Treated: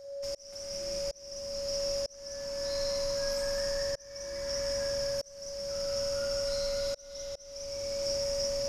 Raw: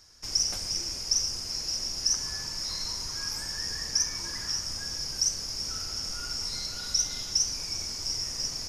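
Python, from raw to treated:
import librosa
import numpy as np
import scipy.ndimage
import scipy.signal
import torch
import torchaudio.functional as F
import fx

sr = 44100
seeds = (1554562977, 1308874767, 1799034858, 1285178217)

y = x + 10.0 ** (-6.0 / 20.0) * np.pad(x, (int(204 * sr / 1000.0), 0))[:len(x)]
y = y + 10.0 ** (-40.0 / 20.0) * np.sin(2.0 * np.pi * 560.0 * np.arange(len(y)) / sr)
y = fx.rev_spring(y, sr, rt60_s=3.0, pass_ms=(41, 50), chirp_ms=75, drr_db=-2.0)
y = fx.auto_swell(y, sr, attack_ms=735.0)
y = F.gain(torch.from_numpy(y), -5.5).numpy()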